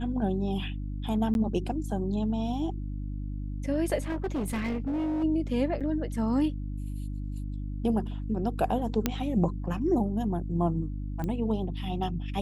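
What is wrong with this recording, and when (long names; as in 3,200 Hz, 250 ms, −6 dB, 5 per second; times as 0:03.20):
mains hum 50 Hz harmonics 6 −34 dBFS
0:01.34–0:01.35: drop-out 11 ms
0:04.08–0:05.24: clipping −26.5 dBFS
0:05.80–0:05.81: drop-out 7 ms
0:09.06: click −10 dBFS
0:11.24: click −21 dBFS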